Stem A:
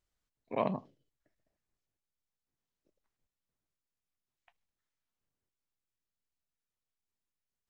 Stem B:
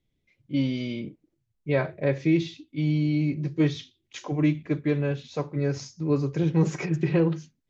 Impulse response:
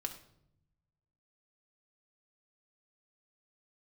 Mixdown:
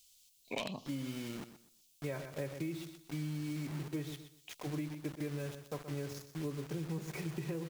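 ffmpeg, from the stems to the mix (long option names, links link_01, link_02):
-filter_complex "[0:a]aexciter=amount=7.2:drive=4.9:freq=2600,highshelf=frequency=2100:width_type=q:width=1.5:gain=6,aeval=exprs='0.106*(abs(mod(val(0)/0.106+3,4)-2)-1)':channel_layout=same,volume=0.5dB[link_01];[1:a]acrusher=bits=5:mix=0:aa=0.000001,adelay=350,volume=-10.5dB,asplit=2[link_02][link_03];[link_03]volume=-12.5dB,aecho=0:1:124|248|372|496:1|0.25|0.0625|0.0156[link_04];[link_01][link_02][link_04]amix=inputs=3:normalize=0,acompressor=threshold=-35dB:ratio=10"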